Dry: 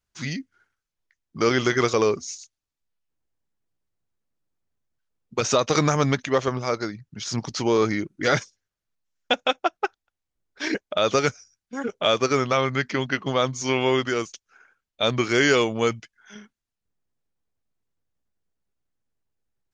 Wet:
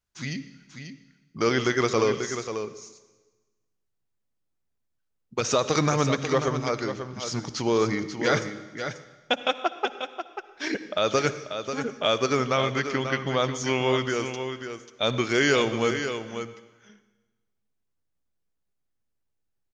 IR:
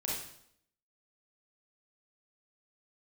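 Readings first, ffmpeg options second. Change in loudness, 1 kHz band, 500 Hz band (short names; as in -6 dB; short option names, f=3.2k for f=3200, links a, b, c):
-2.5 dB, -2.0 dB, -2.0 dB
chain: -filter_complex "[0:a]aecho=1:1:539:0.376,asplit=2[a][b];[1:a]atrim=start_sample=2205,asetrate=22932,aresample=44100[c];[b][c]afir=irnorm=-1:irlink=0,volume=-20.5dB[d];[a][d]amix=inputs=2:normalize=0,volume=-3.5dB"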